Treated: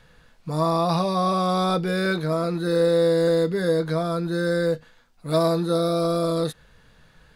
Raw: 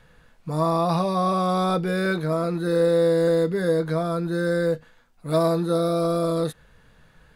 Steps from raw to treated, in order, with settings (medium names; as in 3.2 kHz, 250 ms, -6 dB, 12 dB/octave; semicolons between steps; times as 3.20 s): peaking EQ 4.6 kHz +5 dB 1.2 oct